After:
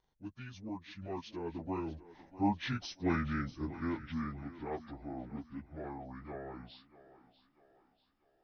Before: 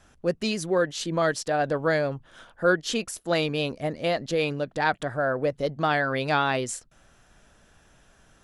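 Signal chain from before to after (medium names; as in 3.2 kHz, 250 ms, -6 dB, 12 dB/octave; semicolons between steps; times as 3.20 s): frequency-domain pitch shifter -11 st; Doppler pass-by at 3.01 s, 32 m/s, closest 22 m; thinning echo 641 ms, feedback 46%, high-pass 180 Hz, level -15.5 dB; trim -6.5 dB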